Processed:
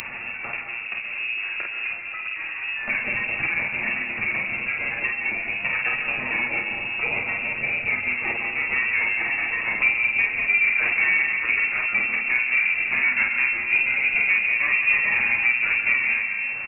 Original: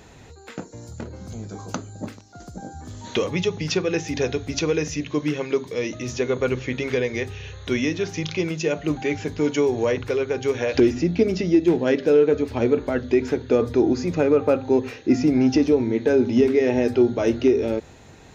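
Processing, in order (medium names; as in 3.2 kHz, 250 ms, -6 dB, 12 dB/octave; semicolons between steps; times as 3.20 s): comb filter that takes the minimum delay 8.5 ms; upward compressor, threshold -26 dBFS; tempo 1.1×; early reflections 31 ms -7.5 dB, 49 ms -3 dB; on a send at -5 dB: reverberation RT60 1.6 s, pre-delay 90 ms; on the sum: frequency inversion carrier 2.7 kHz; three bands compressed up and down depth 40%; trim -4 dB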